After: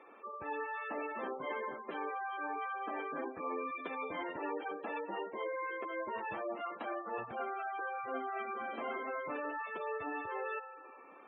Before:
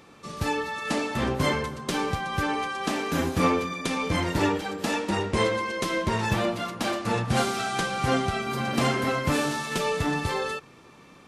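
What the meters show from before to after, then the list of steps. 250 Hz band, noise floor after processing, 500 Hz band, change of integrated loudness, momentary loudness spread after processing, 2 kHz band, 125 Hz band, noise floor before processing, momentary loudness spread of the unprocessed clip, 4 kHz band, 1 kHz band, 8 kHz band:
-18.5 dB, -55 dBFS, -11.5 dB, -13.0 dB, 2 LU, -12.0 dB, -34.5 dB, -52 dBFS, 4 LU, -25.5 dB, -10.0 dB, under -40 dB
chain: three-band isolator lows -23 dB, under 330 Hz, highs -24 dB, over 3500 Hz; spring tank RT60 2.2 s, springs 42 ms, chirp 80 ms, DRR 17.5 dB; reverse; compressor 6:1, threshold -34 dBFS, peak gain reduction 13.5 dB; reverse; spectral gate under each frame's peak -15 dB strong; high shelf 4700 Hz -11.5 dB; gain -1.5 dB

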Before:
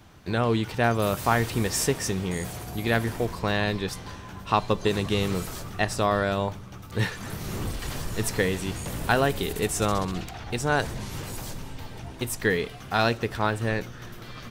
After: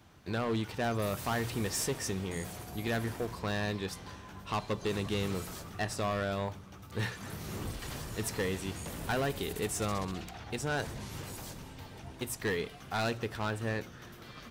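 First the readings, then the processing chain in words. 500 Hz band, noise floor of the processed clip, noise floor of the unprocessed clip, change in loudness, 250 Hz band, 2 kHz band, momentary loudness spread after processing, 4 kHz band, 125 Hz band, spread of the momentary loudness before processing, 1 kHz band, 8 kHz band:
-8.5 dB, -50 dBFS, -42 dBFS, -8.5 dB, -7.5 dB, -9.0 dB, 10 LU, -7.5 dB, -8.0 dB, 12 LU, -10.0 dB, -6.5 dB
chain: HPF 41 Hz; notches 60/120/180 Hz; hard clip -20.5 dBFS, distortion -11 dB; gain -6.5 dB

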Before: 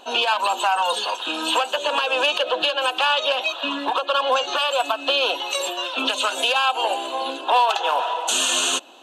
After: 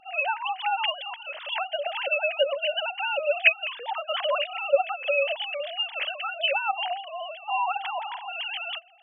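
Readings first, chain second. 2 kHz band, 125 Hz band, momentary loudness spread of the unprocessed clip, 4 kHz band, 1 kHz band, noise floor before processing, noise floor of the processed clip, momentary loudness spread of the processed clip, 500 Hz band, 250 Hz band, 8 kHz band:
-2.5 dB, n/a, 5 LU, -9.0 dB, -8.5 dB, -35 dBFS, -45 dBFS, 9 LU, -3.5 dB, under -35 dB, under -40 dB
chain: sine-wave speech; ten-band EQ 250 Hz +3 dB, 1000 Hz -12 dB, 2000 Hz -4 dB

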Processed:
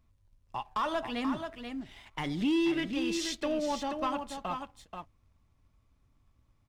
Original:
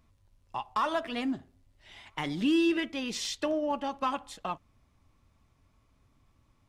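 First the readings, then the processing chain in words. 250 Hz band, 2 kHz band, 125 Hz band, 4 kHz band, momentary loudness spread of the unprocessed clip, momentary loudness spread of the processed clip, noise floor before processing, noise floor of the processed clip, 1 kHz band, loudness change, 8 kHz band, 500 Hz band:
-1.0 dB, -1.5 dB, +1.5 dB, -1.5 dB, 14 LU, 14 LU, -68 dBFS, -70 dBFS, -1.5 dB, -1.5 dB, -1.0 dB, -1.0 dB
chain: echo 0.483 s -7.5 dB; sample leveller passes 1; low shelf 110 Hz +7.5 dB; gain -5 dB

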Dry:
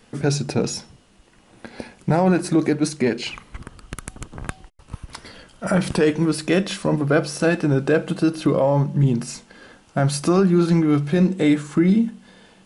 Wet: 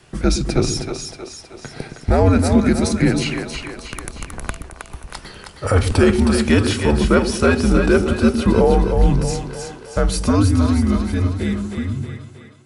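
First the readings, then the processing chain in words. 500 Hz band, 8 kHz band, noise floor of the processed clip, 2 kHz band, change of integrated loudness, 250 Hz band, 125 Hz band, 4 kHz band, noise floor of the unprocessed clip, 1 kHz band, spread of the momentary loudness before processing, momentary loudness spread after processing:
+2.5 dB, +4.0 dB, -42 dBFS, +3.5 dB, +2.5 dB, +2.0 dB, +3.0 dB, +4.5 dB, -54 dBFS, +3.5 dB, 19 LU, 19 LU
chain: ending faded out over 3.05 s; split-band echo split 450 Hz, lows 0.115 s, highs 0.316 s, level -5.5 dB; frequency shift -91 Hz; gain +3.5 dB

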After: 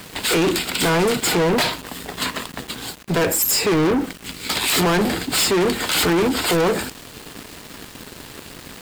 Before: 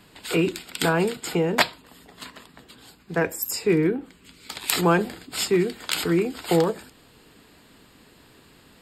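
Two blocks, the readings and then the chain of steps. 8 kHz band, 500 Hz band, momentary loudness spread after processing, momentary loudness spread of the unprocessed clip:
+9.5 dB, +4.0 dB, 20 LU, 13 LU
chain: limiter -15 dBFS, peak gain reduction 11 dB; bit-crush 10-bit; sample leveller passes 5

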